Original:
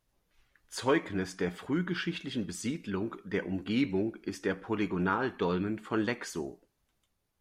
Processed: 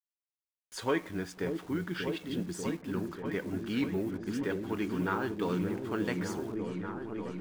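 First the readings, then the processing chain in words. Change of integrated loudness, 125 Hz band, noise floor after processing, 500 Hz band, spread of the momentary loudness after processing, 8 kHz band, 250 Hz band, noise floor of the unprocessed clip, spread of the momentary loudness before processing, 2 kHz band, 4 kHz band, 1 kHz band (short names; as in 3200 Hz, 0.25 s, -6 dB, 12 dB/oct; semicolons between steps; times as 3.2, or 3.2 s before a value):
-1.5 dB, -0.5 dB, under -85 dBFS, -1.0 dB, 6 LU, -2.5 dB, -0.5 dB, -79 dBFS, 7 LU, -2.5 dB, -3.0 dB, -2.5 dB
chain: level-crossing sampler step -47 dBFS; repeats that get brighter 0.589 s, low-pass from 400 Hz, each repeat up 1 oct, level -3 dB; gain -3 dB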